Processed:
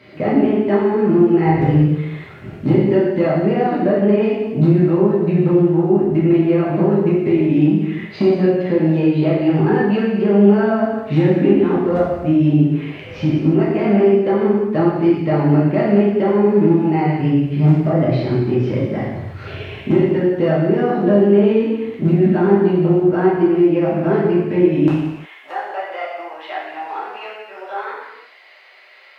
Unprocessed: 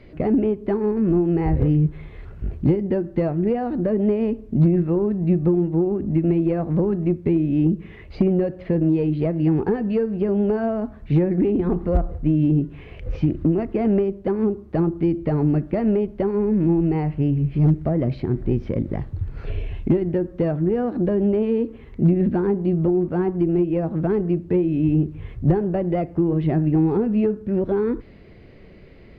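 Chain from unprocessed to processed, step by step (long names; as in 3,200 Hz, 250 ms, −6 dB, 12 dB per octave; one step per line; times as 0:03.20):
high-pass filter 99 Hz 24 dB per octave, from 0:24.88 730 Hz
tilt shelving filter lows −4.5 dB, about 700 Hz
reverb whose tail is shaped and stops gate 390 ms falling, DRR −7.5 dB
level +1 dB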